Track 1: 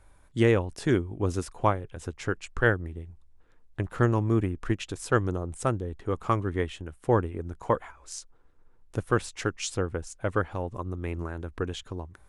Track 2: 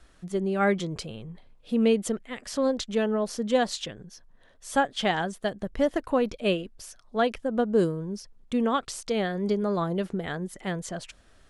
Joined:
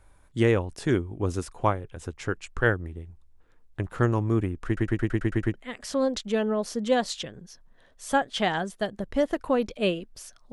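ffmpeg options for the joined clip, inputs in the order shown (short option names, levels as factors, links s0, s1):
-filter_complex "[0:a]apad=whole_dur=10.52,atrim=end=10.52,asplit=8[s0][s1][s2][s3][s4][s5][s6][s7];[s0]atrim=end=4.772[s8];[s1]atrim=start=4.658:end=4.772[s9];[s2]atrim=start=4.658:end=4.772[s10];[s3]atrim=start=4.658:end=4.772[s11];[s4]atrim=start=4.658:end=4.772[s12];[s5]atrim=start=4.658:end=4.772[s13];[s6]atrim=start=4.658:end=4.772[s14];[s7]atrim=start=4.658:end=4.772[s15];[1:a]atrim=start=2.168:end=7.15[s16];[s8][s9]acrossfade=d=0.004:c1=hsin:c2=hsin[s17];[s17][s10]acrossfade=d=0.004:c1=hsin:c2=hsin[s18];[s18][s11]acrossfade=d=0.004:c1=hsin:c2=hsin[s19];[s19][s12]acrossfade=d=0.004:c1=hsin:c2=hsin[s20];[s20][s13]acrossfade=d=0.004:c1=hsin:c2=hsin[s21];[s21][s14]acrossfade=d=0.004:c1=hsin:c2=hsin[s22];[s22][s15]acrossfade=d=0.004:c1=hsin:c2=hsin[s23];[s23][s16]acrossfade=d=0.004:c1=hsin:c2=hsin"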